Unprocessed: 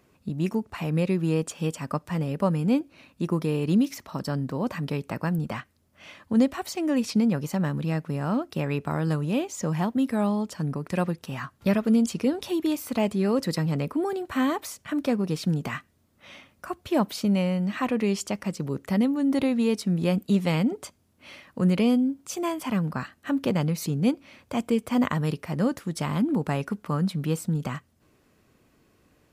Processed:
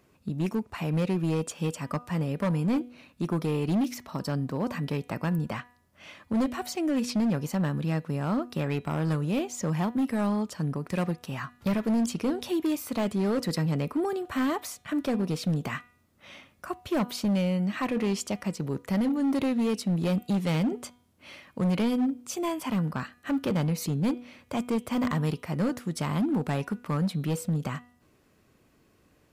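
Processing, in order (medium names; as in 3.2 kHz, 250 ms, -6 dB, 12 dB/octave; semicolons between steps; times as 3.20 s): de-hum 244.1 Hz, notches 17; hard clipper -21 dBFS, distortion -13 dB; trim -1 dB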